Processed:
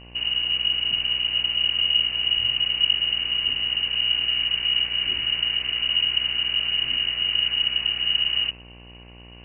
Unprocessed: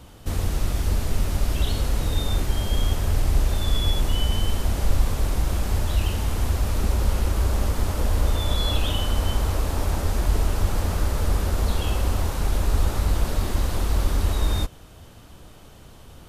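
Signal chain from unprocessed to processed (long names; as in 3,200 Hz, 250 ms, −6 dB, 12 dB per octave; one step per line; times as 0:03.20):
phase-vocoder stretch with locked phases 0.58×
hum removal 99.4 Hz, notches 28
voice inversion scrambler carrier 2,900 Hz
hum with harmonics 60 Hz, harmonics 19, −43 dBFS −5 dB per octave
level −3 dB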